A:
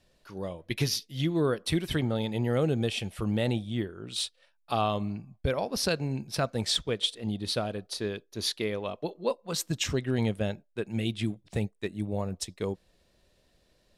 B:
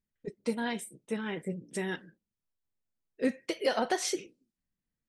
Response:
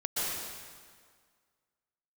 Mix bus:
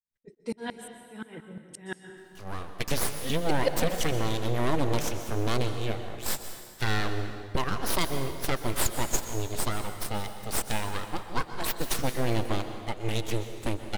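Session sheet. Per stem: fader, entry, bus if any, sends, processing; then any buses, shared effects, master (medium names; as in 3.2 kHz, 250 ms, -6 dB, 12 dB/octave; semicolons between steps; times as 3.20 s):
+1.0 dB, 2.10 s, send -13.5 dB, gate with hold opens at -56 dBFS; treble shelf 7.8 kHz +7.5 dB; full-wave rectifier
+2.0 dB, 0.00 s, send -13 dB, sawtooth tremolo in dB swelling 5.7 Hz, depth 35 dB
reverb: on, RT60 1.8 s, pre-delay 113 ms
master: none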